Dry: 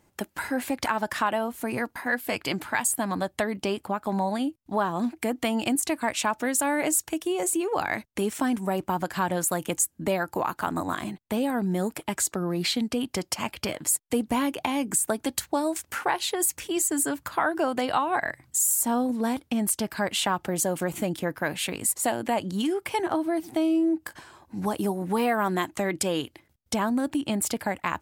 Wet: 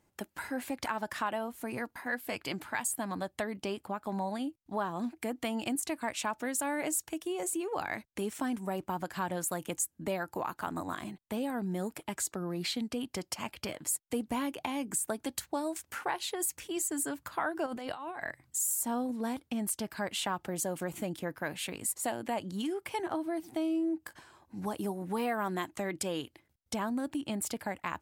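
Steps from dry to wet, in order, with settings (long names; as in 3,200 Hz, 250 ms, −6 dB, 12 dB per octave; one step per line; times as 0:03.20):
0:17.66–0:18.23: compressor whose output falls as the input rises −32 dBFS, ratio −1
level −8 dB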